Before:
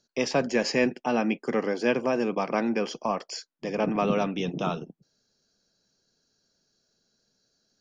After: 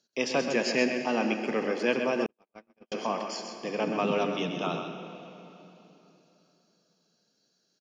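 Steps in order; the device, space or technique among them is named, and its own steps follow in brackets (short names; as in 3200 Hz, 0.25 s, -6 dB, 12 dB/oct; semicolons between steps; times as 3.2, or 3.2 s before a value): PA in a hall (HPF 170 Hz 12 dB/oct; bell 2900 Hz +5 dB 0.66 oct; echo 0.13 s -7.5 dB; reverb RT60 3.3 s, pre-delay 61 ms, DRR 8 dB); 2.26–2.92 gate -19 dBFS, range -59 dB; gain -3 dB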